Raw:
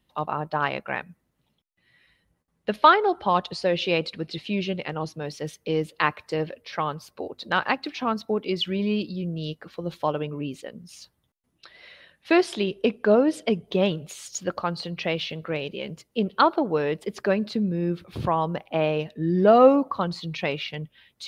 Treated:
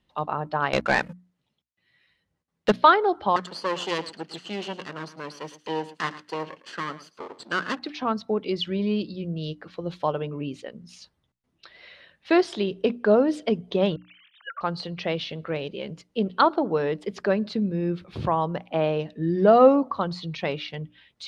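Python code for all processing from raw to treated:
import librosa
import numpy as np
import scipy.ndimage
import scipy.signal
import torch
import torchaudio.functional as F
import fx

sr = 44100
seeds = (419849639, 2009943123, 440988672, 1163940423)

y = fx.chain(x, sr, fx.highpass(hz=60.0, slope=24),
    fx.high_shelf(hz=3000.0, db=5.5),
    fx.leveller(passes=3), at=(0.73, 2.72))
y = fx.chain(y, sr, fx.lower_of_two(delay_ms=0.65),
    fx.highpass(hz=290.0, slope=12),
    fx.echo_single(ms=109, db=-16.0), at=(3.36, 7.79))
y = fx.chain(y, sr, fx.sine_speech(),
    fx.highpass(hz=1200.0, slope=24),
    fx.transient(attack_db=2, sustain_db=7), at=(13.96, 14.61))
y = scipy.signal.sosfilt(scipy.signal.butter(2, 6200.0, 'lowpass', fs=sr, output='sos'), y)
y = fx.hum_notches(y, sr, base_hz=60, count=5)
y = fx.dynamic_eq(y, sr, hz=2500.0, q=2.5, threshold_db=-44.0, ratio=4.0, max_db=-5)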